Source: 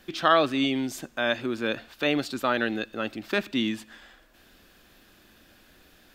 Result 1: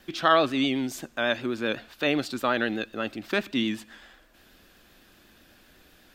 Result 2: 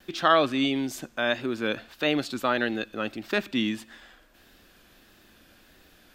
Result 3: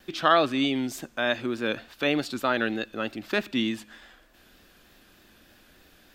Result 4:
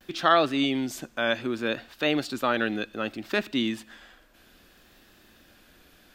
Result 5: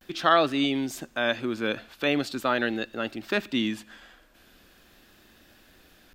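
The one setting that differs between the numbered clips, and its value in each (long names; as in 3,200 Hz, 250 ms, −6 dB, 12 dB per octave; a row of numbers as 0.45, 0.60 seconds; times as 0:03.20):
pitch vibrato, speed: 8, 1.6, 3.3, 0.64, 0.42 Hertz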